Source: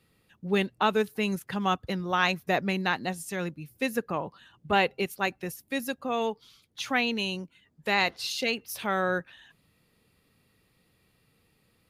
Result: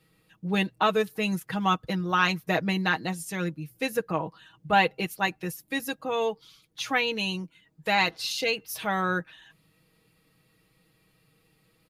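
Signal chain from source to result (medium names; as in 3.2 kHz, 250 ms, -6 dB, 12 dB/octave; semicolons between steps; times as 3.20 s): comb 6.3 ms, depth 69%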